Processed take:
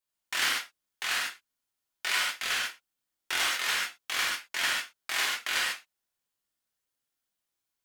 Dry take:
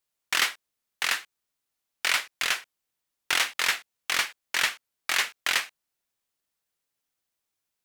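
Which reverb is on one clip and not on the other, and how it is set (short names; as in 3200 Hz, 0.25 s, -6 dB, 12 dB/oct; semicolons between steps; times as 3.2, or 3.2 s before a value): non-linear reverb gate 0.17 s flat, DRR -5 dB; gain -8.5 dB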